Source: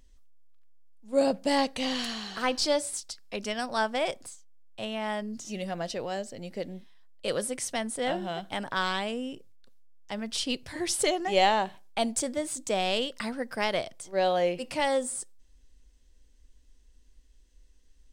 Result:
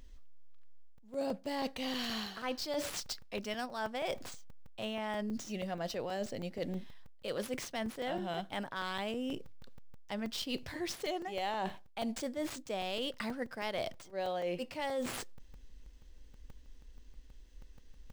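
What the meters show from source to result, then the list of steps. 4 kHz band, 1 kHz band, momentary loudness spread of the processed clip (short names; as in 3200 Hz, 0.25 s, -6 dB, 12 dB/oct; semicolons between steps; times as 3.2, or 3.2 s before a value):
-8.0 dB, -9.5 dB, 5 LU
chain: median filter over 5 samples; reverse; compressor 6:1, threshold -40 dBFS, peak gain reduction 20 dB; reverse; crackling interface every 0.16 s, samples 128, zero, from 0.98; gain +5 dB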